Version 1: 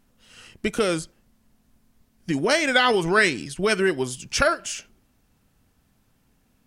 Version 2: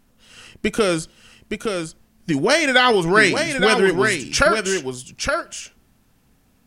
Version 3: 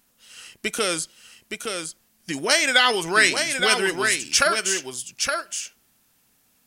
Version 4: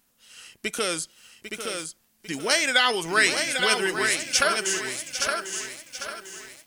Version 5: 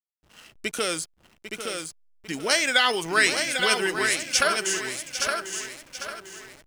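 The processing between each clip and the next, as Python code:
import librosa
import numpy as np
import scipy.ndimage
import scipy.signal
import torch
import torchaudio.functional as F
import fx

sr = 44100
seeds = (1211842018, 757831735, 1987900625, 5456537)

y1 = x + 10.0 ** (-5.5 / 20.0) * np.pad(x, (int(868 * sr / 1000.0), 0))[:len(x)]
y1 = F.gain(torch.from_numpy(y1), 4.0).numpy()
y2 = fx.tilt_eq(y1, sr, slope=3.0)
y2 = F.gain(torch.from_numpy(y2), -4.5).numpy()
y3 = fx.echo_crushed(y2, sr, ms=798, feedback_pct=55, bits=7, wet_db=-10.0)
y3 = F.gain(torch.from_numpy(y3), -3.0).numpy()
y4 = fx.backlash(y3, sr, play_db=-40.0)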